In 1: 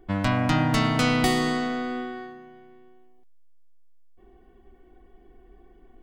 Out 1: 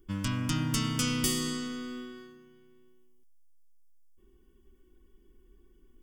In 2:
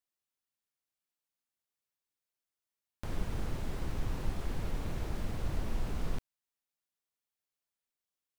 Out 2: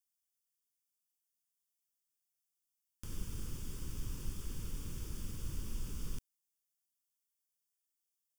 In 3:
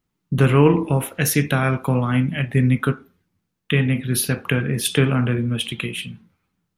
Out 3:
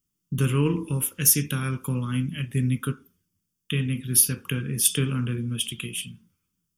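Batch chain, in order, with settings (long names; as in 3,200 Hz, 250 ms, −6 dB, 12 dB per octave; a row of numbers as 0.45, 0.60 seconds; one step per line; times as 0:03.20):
high shelf with overshoot 2,800 Hz +12 dB, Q 3
phaser with its sweep stopped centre 1,700 Hz, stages 4
level −6 dB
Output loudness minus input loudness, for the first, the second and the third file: −7.0, −6.0, −4.5 LU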